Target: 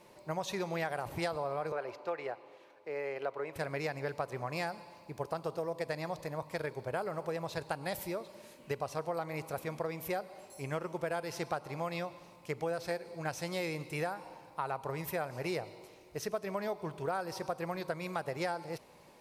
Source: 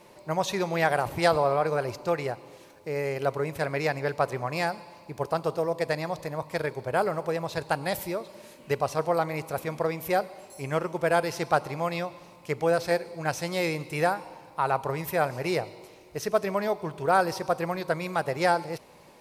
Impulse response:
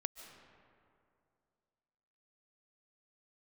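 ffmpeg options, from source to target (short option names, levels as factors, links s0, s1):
-filter_complex "[0:a]asettb=1/sr,asplit=3[s0][s1][s2];[s0]atrim=end=1.724[s3];[s1]atrim=start=1.72:end=3.56,asetpts=PTS-STARTPTS,afade=t=in:d=0.004:c=qsin,afade=t=out:st=1.836:d=0.004:c=qsin,acrossover=split=320 3700:gain=0.141 1 0.158[s4][s5][s6];[s4][s5][s6]amix=inputs=3:normalize=0[s7];[s2]atrim=start=3.556[s8];[s3][s7]acrossfade=d=0.004:c1=hsin:c2=qsin[s9];[s9][s8]acrossfade=d=0.004:c1=qsin:c2=hsin,acompressor=threshold=0.0501:ratio=6,volume=0.531"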